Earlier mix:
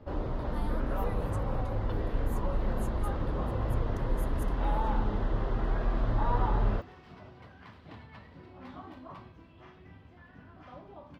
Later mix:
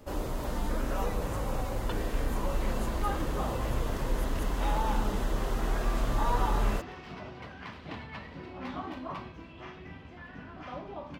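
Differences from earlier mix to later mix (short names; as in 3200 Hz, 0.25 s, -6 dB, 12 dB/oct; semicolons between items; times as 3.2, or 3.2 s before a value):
first sound: remove air absorption 260 m; second sound +8.0 dB; master: add fifteen-band EQ 100 Hz -6 dB, 2500 Hz +4 dB, 6300 Hz +4 dB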